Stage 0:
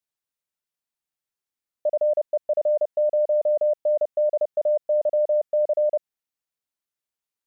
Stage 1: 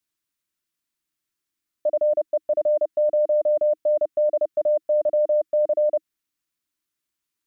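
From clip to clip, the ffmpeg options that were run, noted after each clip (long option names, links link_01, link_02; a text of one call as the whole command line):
ffmpeg -i in.wav -af "equalizer=frequency=315:width_type=o:width=0.33:gain=8,equalizer=frequency=500:width_type=o:width=0.33:gain=-12,equalizer=frequency=800:width_type=o:width=0.33:gain=-10,volume=6dB" out.wav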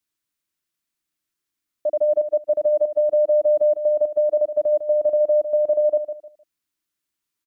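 ffmpeg -i in.wav -af "aecho=1:1:153|306|459:0.335|0.0871|0.0226" out.wav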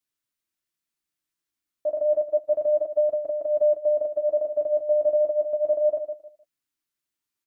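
ffmpeg -i in.wav -af "flanger=delay=7.4:depth=9.3:regen=-31:speed=0.3:shape=sinusoidal" out.wav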